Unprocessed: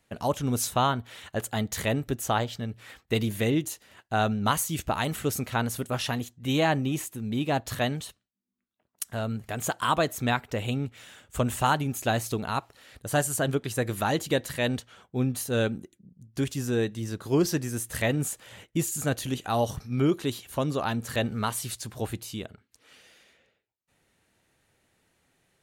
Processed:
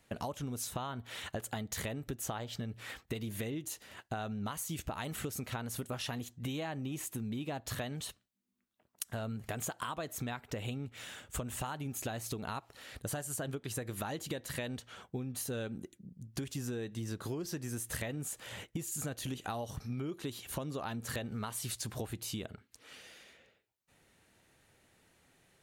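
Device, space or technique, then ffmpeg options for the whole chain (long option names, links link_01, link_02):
serial compression, peaks first: -af "acompressor=threshold=-33dB:ratio=6,acompressor=threshold=-38dB:ratio=3,volume=2dB"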